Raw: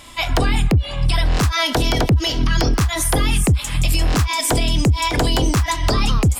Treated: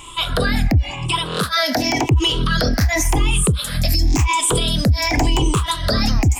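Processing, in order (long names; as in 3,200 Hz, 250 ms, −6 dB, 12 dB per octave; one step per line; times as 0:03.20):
rippled gain that drifts along the octave scale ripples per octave 0.68, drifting +0.92 Hz, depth 15 dB
0:00.90–0:02.11: high-pass filter 170 Hz 12 dB per octave
0:03.95–0:04.16: gain on a spectral selection 430–3,200 Hz −17 dB
brickwall limiter −8.5 dBFS, peak gain reduction 4.5 dB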